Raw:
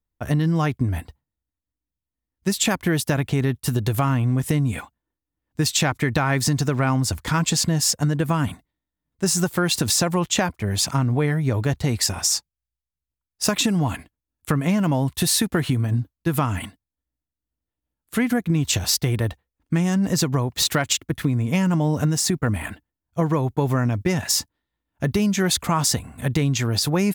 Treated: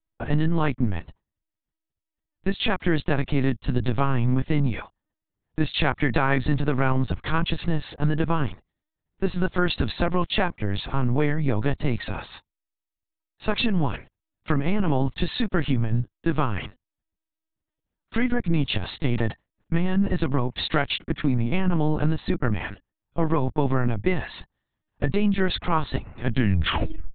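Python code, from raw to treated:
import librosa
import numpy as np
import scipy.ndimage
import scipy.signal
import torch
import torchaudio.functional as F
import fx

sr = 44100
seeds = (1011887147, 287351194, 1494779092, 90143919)

y = fx.tape_stop_end(x, sr, length_s=0.92)
y = fx.lpc_vocoder(y, sr, seeds[0], excitation='pitch_kept', order=10)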